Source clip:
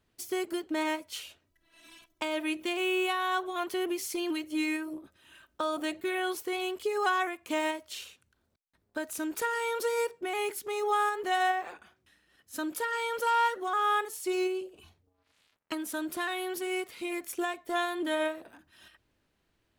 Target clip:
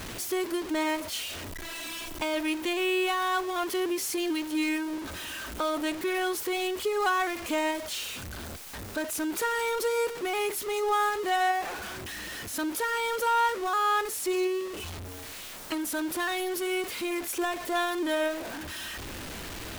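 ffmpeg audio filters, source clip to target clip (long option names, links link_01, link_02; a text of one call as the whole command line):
ffmpeg -i in.wav -af "aeval=exprs='val(0)+0.5*0.0237*sgn(val(0))':channel_layout=same,equalizer=frequency=140:width=5.3:gain=-6" out.wav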